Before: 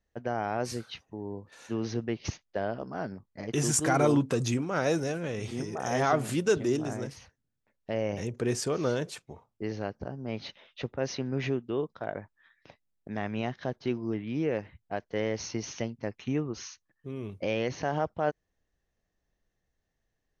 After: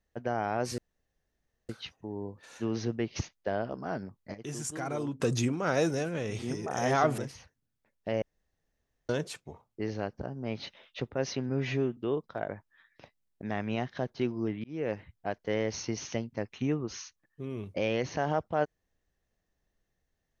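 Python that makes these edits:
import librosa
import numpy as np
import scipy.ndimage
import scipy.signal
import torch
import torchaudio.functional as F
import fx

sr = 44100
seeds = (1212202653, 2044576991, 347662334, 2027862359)

y = fx.edit(x, sr, fx.insert_room_tone(at_s=0.78, length_s=0.91),
    fx.clip_gain(start_s=3.43, length_s=0.86, db=-10.5),
    fx.cut(start_s=6.27, length_s=0.73),
    fx.room_tone_fill(start_s=8.04, length_s=0.87),
    fx.stretch_span(start_s=11.31, length_s=0.32, factor=1.5),
    fx.fade_in_span(start_s=14.3, length_s=0.29), tone=tone)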